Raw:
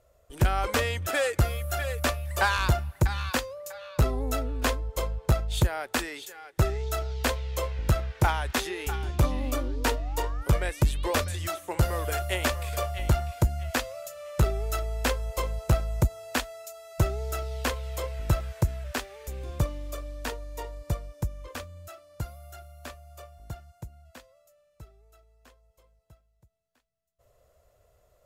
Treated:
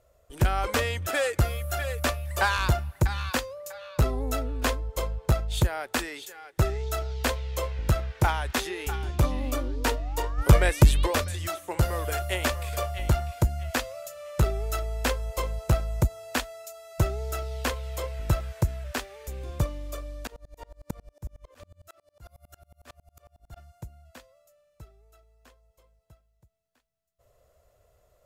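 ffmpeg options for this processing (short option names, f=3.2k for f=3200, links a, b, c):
-filter_complex "[0:a]asplit=3[a][b][c];[a]afade=t=out:st=10.37:d=0.02[d];[b]acontrast=89,afade=t=in:st=10.37:d=0.02,afade=t=out:st=11.05:d=0.02[e];[c]afade=t=in:st=11.05:d=0.02[f];[d][e][f]amix=inputs=3:normalize=0,asplit=3[g][h][i];[g]afade=t=out:st=20.24:d=0.02[j];[h]aeval=exprs='val(0)*pow(10,-32*if(lt(mod(-11*n/s,1),2*abs(-11)/1000),1-mod(-11*n/s,1)/(2*abs(-11)/1000),(mod(-11*n/s,1)-2*abs(-11)/1000)/(1-2*abs(-11)/1000))/20)':c=same,afade=t=in:st=20.24:d=0.02,afade=t=out:st=23.56:d=0.02[k];[i]afade=t=in:st=23.56:d=0.02[l];[j][k][l]amix=inputs=3:normalize=0"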